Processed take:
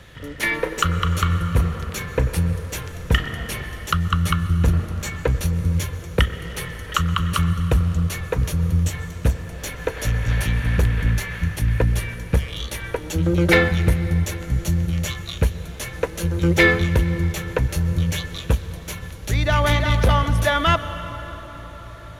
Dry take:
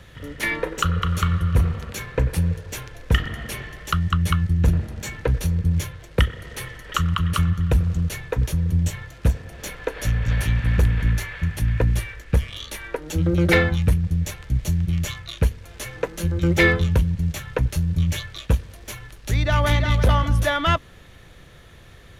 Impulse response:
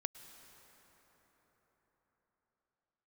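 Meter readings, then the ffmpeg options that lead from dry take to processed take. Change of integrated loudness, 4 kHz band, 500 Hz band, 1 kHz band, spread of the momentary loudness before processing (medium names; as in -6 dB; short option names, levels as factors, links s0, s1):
+1.0 dB, +2.5 dB, +2.5 dB, +2.5 dB, 12 LU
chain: -filter_complex "[0:a]lowshelf=f=190:g=-3,asplit=2[s0][s1];[1:a]atrim=start_sample=2205,asetrate=37044,aresample=44100[s2];[s1][s2]afir=irnorm=-1:irlink=0,volume=2.66[s3];[s0][s3]amix=inputs=2:normalize=0,volume=0.398"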